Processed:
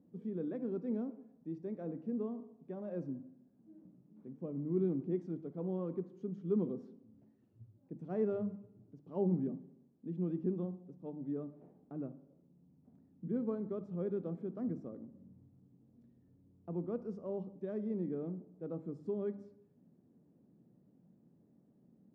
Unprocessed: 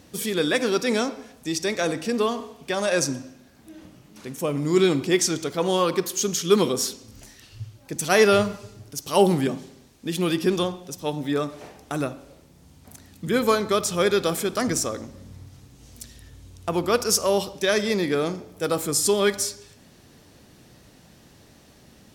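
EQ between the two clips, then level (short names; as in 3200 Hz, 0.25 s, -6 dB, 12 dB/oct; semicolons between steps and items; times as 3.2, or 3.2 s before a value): ladder band-pass 220 Hz, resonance 40%; notches 50/100/150/200 Hz; -1.5 dB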